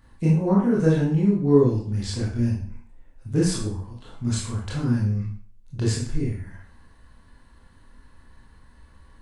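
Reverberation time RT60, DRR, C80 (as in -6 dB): 0.45 s, -5.5 dB, 8.5 dB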